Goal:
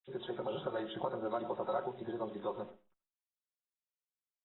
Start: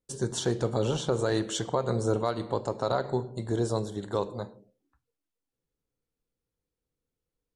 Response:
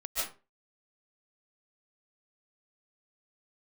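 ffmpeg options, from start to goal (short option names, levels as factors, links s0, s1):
-filter_complex "[0:a]highpass=350,aemphasis=mode=reproduction:type=riaa,aecho=1:1:5.5:0.7,acrossover=split=650[s0][s1];[s0]acompressor=threshold=0.0224:ratio=8[s2];[s2][s1]amix=inputs=2:normalize=0,aresample=16000,aresample=44100,acrusher=bits=9:dc=4:mix=0:aa=0.000001,acrossover=split=1800[s3][s4];[s3]adelay=30[s5];[s5][s4]amix=inputs=2:normalize=0,asplit=2[s6][s7];[1:a]atrim=start_sample=2205[s8];[s7][s8]afir=irnorm=-1:irlink=0,volume=0.106[s9];[s6][s9]amix=inputs=2:normalize=0,atempo=1.7,volume=0.447" -ar 22050 -c:a aac -b:a 16k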